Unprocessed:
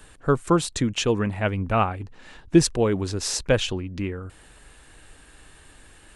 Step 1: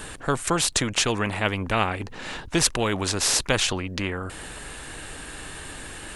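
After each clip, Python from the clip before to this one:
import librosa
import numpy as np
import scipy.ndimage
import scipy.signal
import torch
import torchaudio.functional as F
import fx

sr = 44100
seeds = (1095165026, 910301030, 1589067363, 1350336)

y = fx.spectral_comp(x, sr, ratio=2.0)
y = F.gain(torch.from_numpy(y), 2.5).numpy()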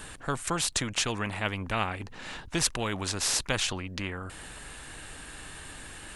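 y = fx.peak_eq(x, sr, hz=420.0, db=-3.5, octaves=1.2)
y = F.gain(torch.from_numpy(y), -5.5).numpy()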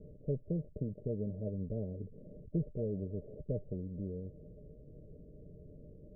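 y = scipy.signal.sosfilt(scipy.signal.cheby1(6, 9, 620.0, 'lowpass', fs=sr, output='sos'), x)
y = F.gain(torch.from_numpy(y), 1.5).numpy()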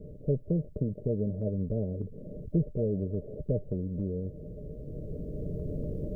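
y = fx.recorder_agc(x, sr, target_db=-31.5, rise_db_per_s=7.7, max_gain_db=30)
y = F.gain(torch.from_numpy(y), 7.0).numpy()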